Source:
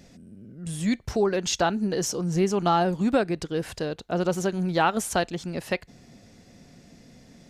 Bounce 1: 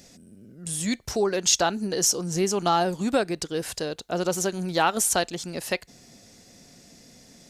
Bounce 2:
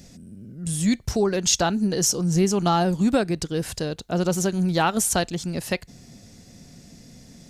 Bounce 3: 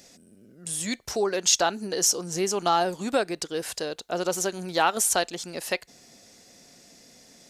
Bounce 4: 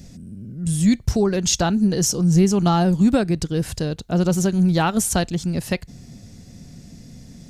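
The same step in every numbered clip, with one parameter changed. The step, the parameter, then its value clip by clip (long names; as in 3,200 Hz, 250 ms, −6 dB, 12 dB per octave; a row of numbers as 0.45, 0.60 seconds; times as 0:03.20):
bass and treble, bass: −5, +6, −14, +14 decibels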